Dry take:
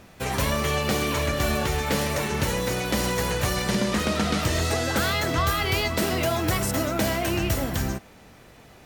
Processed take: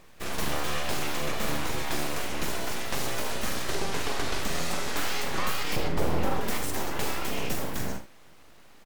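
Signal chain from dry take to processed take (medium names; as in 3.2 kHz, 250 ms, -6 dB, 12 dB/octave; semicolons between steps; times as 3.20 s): 5.76–6.41 s: tilt shelf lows +8.5 dB, about 720 Hz; full-wave rectifier; early reflections 41 ms -9 dB, 75 ms -11 dB; trim -4 dB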